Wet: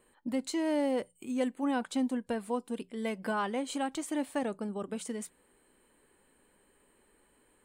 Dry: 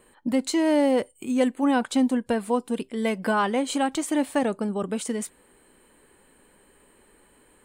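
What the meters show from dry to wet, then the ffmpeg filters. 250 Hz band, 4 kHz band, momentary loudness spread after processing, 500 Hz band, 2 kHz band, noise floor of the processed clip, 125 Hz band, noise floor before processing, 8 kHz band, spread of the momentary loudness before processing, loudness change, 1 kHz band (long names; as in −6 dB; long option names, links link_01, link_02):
−9.0 dB, −9.0 dB, 7 LU, −9.0 dB, −9.0 dB, −68 dBFS, can't be measured, −59 dBFS, −9.0 dB, 7 LU, −9.0 dB, −9.0 dB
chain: -af "bandreject=frequency=60:width_type=h:width=6,bandreject=frequency=120:width_type=h:width=6,bandreject=frequency=180:width_type=h:width=6,volume=-9dB"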